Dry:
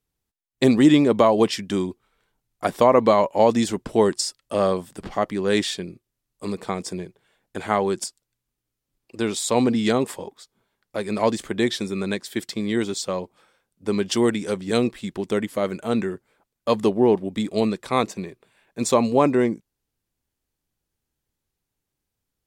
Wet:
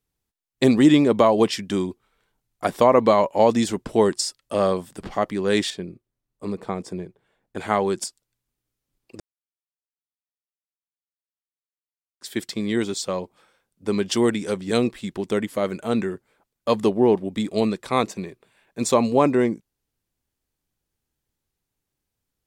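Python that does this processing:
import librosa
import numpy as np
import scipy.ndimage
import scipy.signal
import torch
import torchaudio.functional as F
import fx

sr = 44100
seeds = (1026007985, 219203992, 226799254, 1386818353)

y = fx.high_shelf(x, sr, hz=2000.0, db=-10.5, at=(5.7, 7.57))
y = fx.edit(y, sr, fx.silence(start_s=9.2, length_s=3.01), tone=tone)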